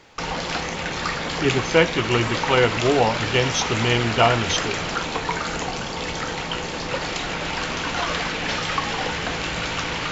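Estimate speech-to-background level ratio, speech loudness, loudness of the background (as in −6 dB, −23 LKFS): 4.5 dB, −21.0 LKFS, −25.5 LKFS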